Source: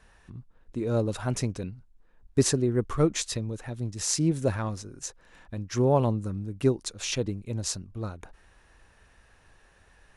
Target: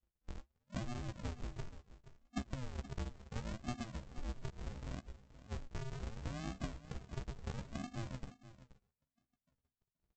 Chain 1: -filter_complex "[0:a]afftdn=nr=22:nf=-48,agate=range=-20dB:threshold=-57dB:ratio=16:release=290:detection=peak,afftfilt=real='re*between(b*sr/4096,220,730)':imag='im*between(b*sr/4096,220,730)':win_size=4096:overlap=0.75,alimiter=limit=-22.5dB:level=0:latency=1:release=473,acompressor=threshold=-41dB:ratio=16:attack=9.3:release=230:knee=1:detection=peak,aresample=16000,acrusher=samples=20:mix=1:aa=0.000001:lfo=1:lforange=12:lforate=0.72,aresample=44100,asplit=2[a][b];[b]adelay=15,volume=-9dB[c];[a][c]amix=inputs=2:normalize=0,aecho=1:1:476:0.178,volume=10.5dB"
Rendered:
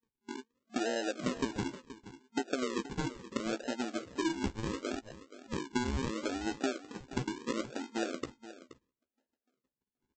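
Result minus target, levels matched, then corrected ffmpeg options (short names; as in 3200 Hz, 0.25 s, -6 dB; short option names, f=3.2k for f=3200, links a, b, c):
decimation with a swept rate: distortion -15 dB; compressor: peak gain reduction -7.5 dB
-filter_complex "[0:a]afftdn=nr=22:nf=-48,agate=range=-20dB:threshold=-57dB:ratio=16:release=290:detection=peak,afftfilt=real='re*between(b*sr/4096,220,730)':imag='im*between(b*sr/4096,220,730)':win_size=4096:overlap=0.75,alimiter=limit=-22.5dB:level=0:latency=1:release=473,acompressor=threshold=-49dB:ratio=16:attack=9.3:release=230:knee=1:detection=peak,aresample=16000,acrusher=samples=47:mix=1:aa=0.000001:lfo=1:lforange=28.2:lforate=0.72,aresample=44100,asplit=2[a][b];[b]adelay=15,volume=-9dB[c];[a][c]amix=inputs=2:normalize=0,aecho=1:1:476:0.178,volume=10.5dB"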